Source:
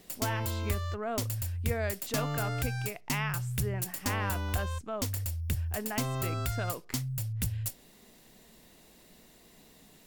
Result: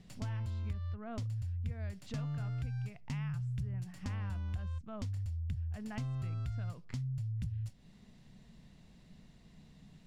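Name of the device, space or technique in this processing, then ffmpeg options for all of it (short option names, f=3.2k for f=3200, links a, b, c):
jukebox: -filter_complex "[0:a]lowpass=5.3k,lowshelf=f=240:t=q:w=1.5:g=12,acompressor=threshold=-32dB:ratio=3,asettb=1/sr,asplit=3[a][b][c];[a]atrim=end=0.734[d];[b]atrim=start=0.73:end=1.13,asetpts=PTS-STARTPTS,afade=t=in:d=0.004:c=qsin,afade=t=out:st=0.396:d=0.004:c=qsin,lowpass=f=5.2k:w=0.5412,lowpass=f=5.2k:w=1.3066[e];[c]atrim=start=1.126[f];[d][e]acrossfade=d=0.004:c1=hsin:c2=qsin[g];[g][f]acrossfade=d=0.004:c1=qsin:c2=hsin,volume=-7dB"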